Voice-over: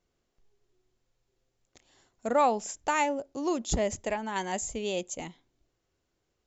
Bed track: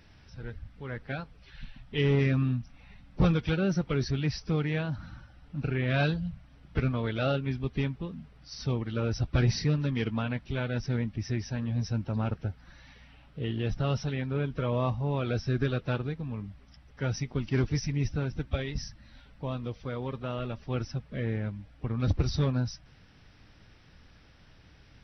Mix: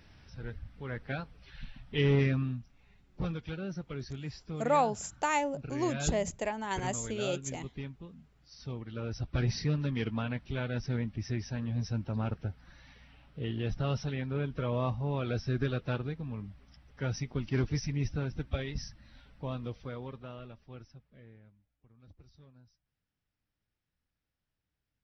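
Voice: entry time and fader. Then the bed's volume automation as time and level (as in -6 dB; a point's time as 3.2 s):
2.35 s, -2.5 dB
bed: 2.2 s -1 dB
2.74 s -11 dB
8.53 s -11 dB
9.78 s -3 dB
19.73 s -3 dB
21.85 s -31 dB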